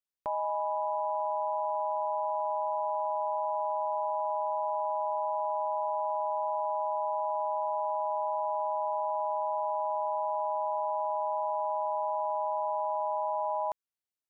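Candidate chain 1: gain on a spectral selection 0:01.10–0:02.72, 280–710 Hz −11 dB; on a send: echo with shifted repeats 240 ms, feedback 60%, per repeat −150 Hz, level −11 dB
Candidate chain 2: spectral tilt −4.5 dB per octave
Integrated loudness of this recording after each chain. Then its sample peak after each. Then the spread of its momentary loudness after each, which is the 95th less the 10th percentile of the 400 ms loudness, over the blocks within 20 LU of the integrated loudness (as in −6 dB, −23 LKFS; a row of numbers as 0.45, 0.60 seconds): −31.0, −30.0 LKFS; −21.0, −18.5 dBFS; 1, 0 LU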